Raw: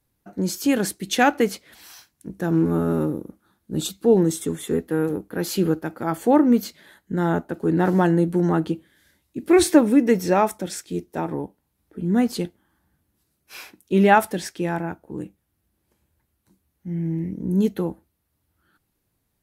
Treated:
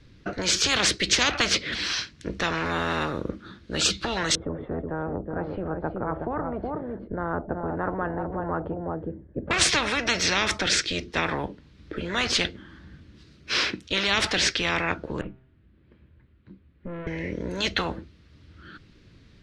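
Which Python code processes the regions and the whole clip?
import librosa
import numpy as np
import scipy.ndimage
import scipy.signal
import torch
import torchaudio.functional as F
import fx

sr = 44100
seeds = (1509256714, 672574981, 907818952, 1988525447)

y = fx.chain(x, sr, fx.cheby1_lowpass(hz=760.0, order=3),
    fx.echo_single(ms=370, db=-11.0), at=(4.35, 9.51))
y = fx.chain(y, sr, fx.tube_stage(drive_db=37.0, bias=0.45),
    fx.air_absorb(metres=430.0),
    fx.comb_fb(f0_hz=130.0, decay_s=0.71, harmonics='all', damping=0.0, mix_pct=50), at=(15.21, 17.07))
y = scipy.signal.sosfilt(scipy.signal.butter(4, 4800.0, 'lowpass', fs=sr, output='sos'), y)
y = fx.peak_eq(y, sr, hz=810.0, db=-15.0, octaves=0.81)
y = fx.spectral_comp(y, sr, ratio=10.0)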